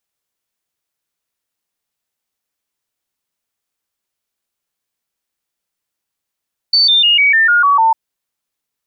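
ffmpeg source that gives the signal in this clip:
-f lavfi -i "aevalsrc='0.422*clip(min(mod(t,0.15),0.15-mod(t,0.15))/0.005,0,1)*sin(2*PI*4530*pow(2,-floor(t/0.15)/3)*mod(t,0.15))':d=1.2:s=44100"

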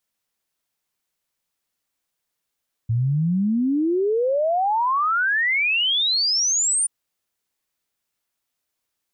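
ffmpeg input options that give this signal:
-f lavfi -i "aevalsrc='0.133*clip(min(t,3.98-t)/0.01,0,1)*sin(2*PI*110*3.98/log(9400/110)*(exp(log(9400/110)*t/3.98)-1))':d=3.98:s=44100"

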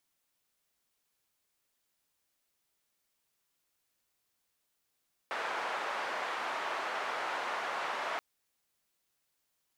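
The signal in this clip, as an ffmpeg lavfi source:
-f lavfi -i "anoisesrc=c=white:d=2.88:r=44100:seed=1,highpass=f=730,lowpass=f=1200,volume=-15.6dB"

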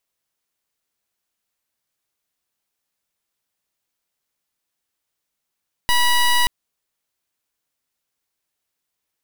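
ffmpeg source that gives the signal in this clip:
-f lavfi -i "aevalsrc='0.168*(2*lt(mod(973*t,1),0.14)-1)':d=0.58:s=44100"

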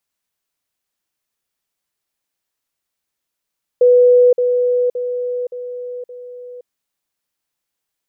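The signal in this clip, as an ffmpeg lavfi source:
-f lavfi -i "aevalsrc='pow(10,(-6.5-6*floor(t/0.57))/20)*sin(2*PI*493*t)*clip(min(mod(t,0.57),0.52-mod(t,0.57))/0.005,0,1)':d=2.85:s=44100"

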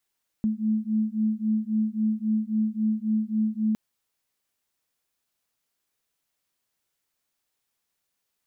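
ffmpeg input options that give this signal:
-f lavfi -i "aevalsrc='0.0531*(sin(2*PI*215*t)+sin(2*PI*218.7*t))':d=3.31:s=44100"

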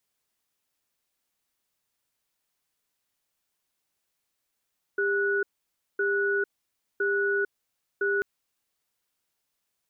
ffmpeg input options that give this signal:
-f lavfi -i "aevalsrc='0.0531*(sin(2*PI*400*t)+sin(2*PI*1470*t))*clip(min(mod(t,1.01),0.45-mod(t,1.01))/0.005,0,1)':d=3.24:s=44100"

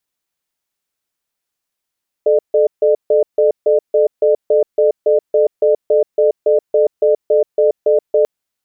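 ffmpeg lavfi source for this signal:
-f lavfi -i "aevalsrc='0.266*(sin(2*PI*435*t)+sin(2*PI*602*t))*clip(min(mod(t,0.28),0.13-mod(t,0.28))/0.005,0,1)':d=5.99:s=44100"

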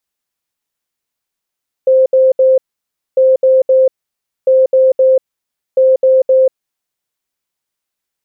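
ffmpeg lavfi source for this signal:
-f lavfi -i "aevalsrc='0.531*sin(2*PI*523*t)*clip(min(mod(mod(t,1.3),0.26),0.19-mod(mod(t,1.3),0.26))/0.005,0,1)*lt(mod(t,1.3),0.78)':d=5.2:s=44100"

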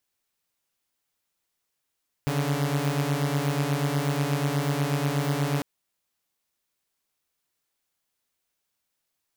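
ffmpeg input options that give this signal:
-f lavfi -i "aevalsrc='0.0631*((2*mod(138.59*t,1)-1)+(2*mod(146.83*t,1)-1))':d=3.35:s=44100"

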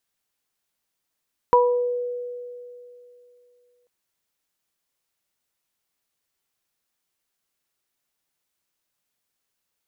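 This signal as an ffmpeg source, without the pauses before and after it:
-f lavfi -i "aevalsrc='0.188*pow(10,-3*t/2.87)*sin(2*PI*489*t)+0.299*pow(10,-3*t/0.45)*sin(2*PI*978*t)':d=2.34:s=44100"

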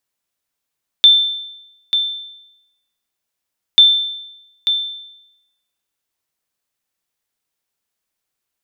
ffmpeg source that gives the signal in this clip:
-f lavfi -i "aevalsrc='0.794*(sin(2*PI*3550*mod(t,2.74))*exp(-6.91*mod(t,2.74)/0.9)+0.376*sin(2*PI*3550*max(mod(t,2.74)-0.89,0))*exp(-6.91*max(mod(t,2.74)-0.89,0)/0.9))':d=5.48:s=44100"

